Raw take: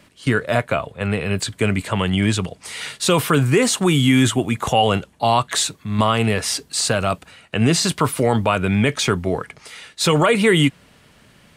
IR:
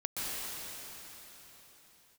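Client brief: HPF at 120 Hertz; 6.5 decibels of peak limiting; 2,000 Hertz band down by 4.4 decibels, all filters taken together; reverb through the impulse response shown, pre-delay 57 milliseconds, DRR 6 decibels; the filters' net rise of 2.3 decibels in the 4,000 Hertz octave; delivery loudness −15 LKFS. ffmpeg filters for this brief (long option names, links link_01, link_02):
-filter_complex "[0:a]highpass=120,equalizer=frequency=2000:width_type=o:gain=-7.5,equalizer=frequency=4000:width_type=o:gain=5.5,alimiter=limit=-11.5dB:level=0:latency=1,asplit=2[link_01][link_02];[1:a]atrim=start_sample=2205,adelay=57[link_03];[link_02][link_03]afir=irnorm=-1:irlink=0,volume=-12dB[link_04];[link_01][link_04]amix=inputs=2:normalize=0,volume=6.5dB"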